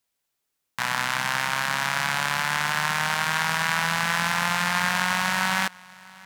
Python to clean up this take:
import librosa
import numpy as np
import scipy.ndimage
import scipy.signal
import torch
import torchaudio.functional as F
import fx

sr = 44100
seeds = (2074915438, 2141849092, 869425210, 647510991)

y = fx.fix_echo_inverse(x, sr, delay_ms=643, level_db=-23.0)